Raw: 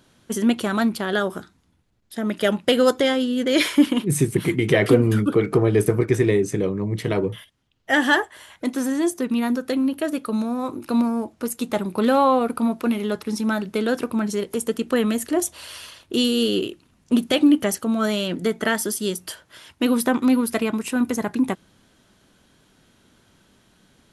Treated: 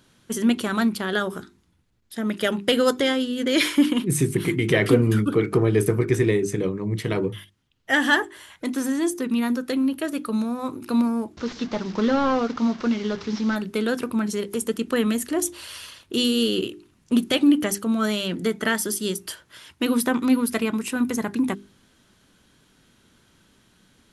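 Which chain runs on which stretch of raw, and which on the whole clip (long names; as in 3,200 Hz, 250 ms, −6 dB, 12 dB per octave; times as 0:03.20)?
0:11.37–0:13.56: linear delta modulator 32 kbit/s, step −33.5 dBFS + parametric band 2,500 Hz −3.5 dB 0.27 octaves
whole clip: parametric band 660 Hz −5 dB 0.89 octaves; mains-hum notches 50/100/150/200/250/300/350/400 Hz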